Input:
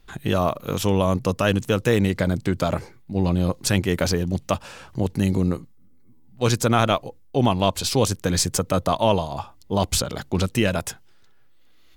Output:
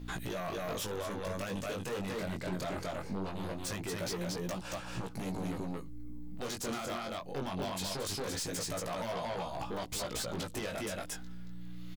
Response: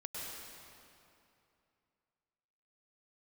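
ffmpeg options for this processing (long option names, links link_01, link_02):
-filter_complex "[0:a]aeval=exprs='val(0)+0.00891*(sin(2*PI*60*n/s)+sin(2*PI*2*60*n/s)/2+sin(2*PI*3*60*n/s)/3+sin(2*PI*4*60*n/s)/4+sin(2*PI*5*60*n/s)/5)':channel_layout=same,equalizer=frequency=77:width_type=o:width=2.4:gain=-8.5,asplit=2[link_01][link_02];[link_02]aecho=0:1:227:0.596[link_03];[link_01][link_03]amix=inputs=2:normalize=0,acompressor=threshold=-35dB:ratio=2.5,asplit=2[link_04][link_05];[link_05]aeval=exprs='(mod(10.6*val(0)+1,2)-1)/10.6':channel_layout=same,volume=-5.5dB[link_06];[link_04][link_06]amix=inputs=2:normalize=0,alimiter=limit=-21.5dB:level=0:latency=1:release=41,aeval=exprs='0.0841*sin(PI/2*2*val(0)/0.0841)':channel_layout=same,flanger=delay=16.5:depth=5.7:speed=0.21,volume=-8dB"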